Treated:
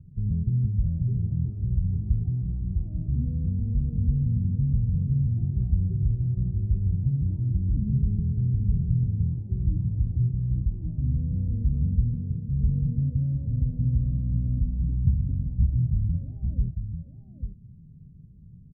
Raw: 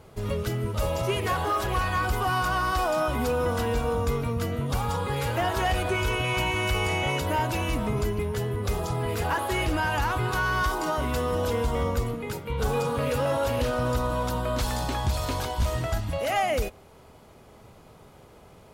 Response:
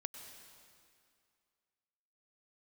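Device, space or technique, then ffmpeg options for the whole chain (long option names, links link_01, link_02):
the neighbour's flat through the wall: -af "lowpass=frequency=180:width=0.5412,lowpass=frequency=180:width=1.3066,equalizer=frequency=160:width_type=o:width=0.81:gain=5.5,aecho=1:1:842:0.422,volume=4dB"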